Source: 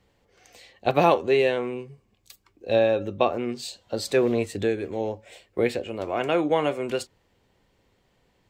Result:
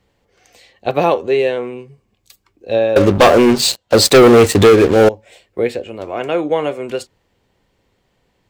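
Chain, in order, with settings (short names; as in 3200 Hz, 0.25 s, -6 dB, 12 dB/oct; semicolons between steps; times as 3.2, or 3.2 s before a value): dynamic EQ 470 Hz, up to +4 dB, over -30 dBFS, Q 2.3; 2.96–5.09 sample leveller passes 5; gain +3 dB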